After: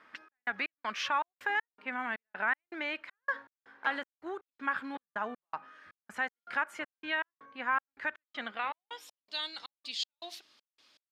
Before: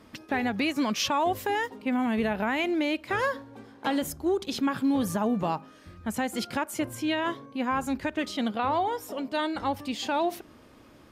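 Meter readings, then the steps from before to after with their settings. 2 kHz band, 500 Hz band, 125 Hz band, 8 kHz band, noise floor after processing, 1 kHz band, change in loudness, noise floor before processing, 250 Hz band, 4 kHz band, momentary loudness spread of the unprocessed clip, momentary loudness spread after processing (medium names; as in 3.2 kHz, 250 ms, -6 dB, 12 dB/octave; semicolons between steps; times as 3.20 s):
0.0 dB, -14.5 dB, under -25 dB, under -10 dB, under -85 dBFS, -7.0 dB, -7.0 dB, -54 dBFS, -19.5 dB, -5.0 dB, 6 LU, 12 LU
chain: trance gate "xxx..xx..x" 160 bpm -60 dB; band-pass sweep 1.6 kHz -> 4.2 kHz, 8.41–9.26 s; trim +5 dB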